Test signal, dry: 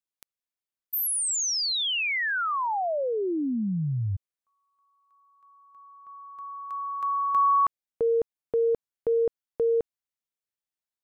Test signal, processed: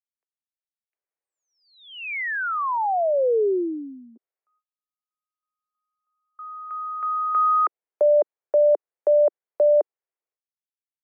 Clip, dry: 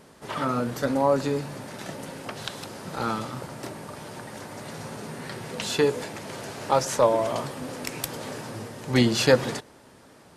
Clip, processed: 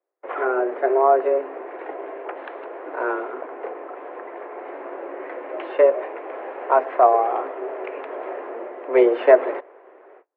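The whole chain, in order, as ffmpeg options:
-af "agate=range=-36dB:threshold=-41dB:ratio=16:release=485:detection=rms,tiltshelf=f=690:g=6,highpass=f=250:t=q:w=0.5412,highpass=f=250:t=q:w=1.307,lowpass=f=2.3k:t=q:w=0.5176,lowpass=f=2.3k:t=q:w=0.7071,lowpass=f=2.3k:t=q:w=1.932,afreqshift=130,volume=4.5dB"

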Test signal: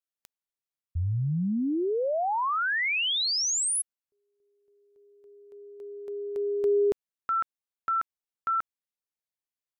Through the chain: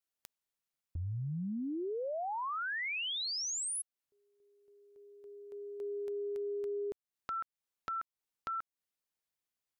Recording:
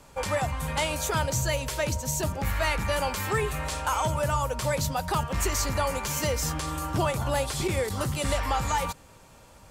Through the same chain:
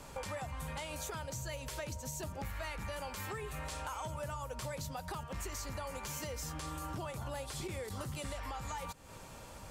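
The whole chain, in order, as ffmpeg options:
-af "acompressor=threshold=-37dB:ratio=12:attack=1.2:release=521:knee=1:detection=peak,volume=2dB"

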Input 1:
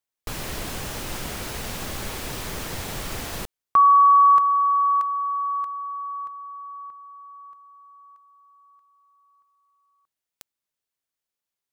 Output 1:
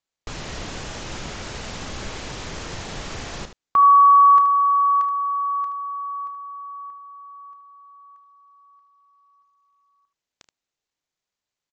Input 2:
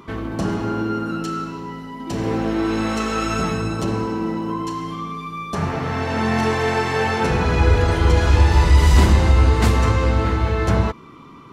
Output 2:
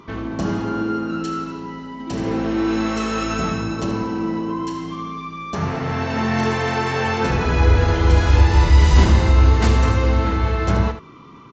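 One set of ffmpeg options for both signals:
-filter_complex "[0:a]asplit=2[a][b];[b]aecho=0:1:31|76:0.224|0.299[c];[a][c]amix=inputs=2:normalize=0,volume=-1dB" -ar 16000 -c:a sbc -b:a 64k

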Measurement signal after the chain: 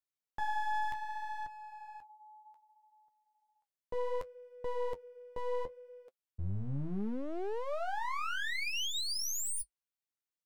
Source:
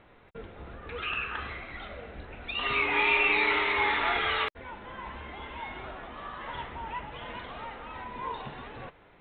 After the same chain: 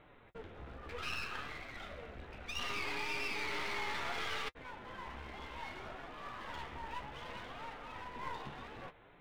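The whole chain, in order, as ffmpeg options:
-af "alimiter=limit=-23.5dB:level=0:latency=1:release=23,aeval=exprs='clip(val(0),-1,0.00473)':c=same,flanger=delay=6.6:depth=8.6:regen=-40:speed=0.65:shape=sinusoidal"

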